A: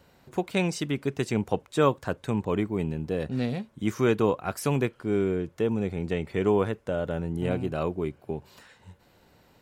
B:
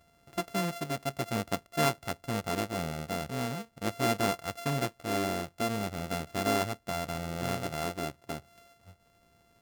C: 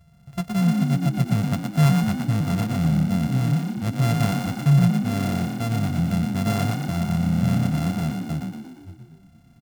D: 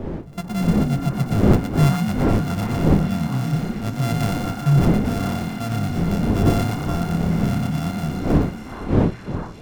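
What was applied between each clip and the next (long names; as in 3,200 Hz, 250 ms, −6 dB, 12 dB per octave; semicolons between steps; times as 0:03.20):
samples sorted by size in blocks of 64 samples; level −5.5 dB
low shelf with overshoot 220 Hz +11.5 dB, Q 3; on a send: echo with shifted repeats 116 ms, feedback 54%, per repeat +33 Hz, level −4 dB
wind on the microphone 270 Hz −23 dBFS; mains-hum notches 60/120/180 Hz; echo through a band-pass that steps 420 ms, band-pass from 1,200 Hz, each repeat 0.7 octaves, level −3.5 dB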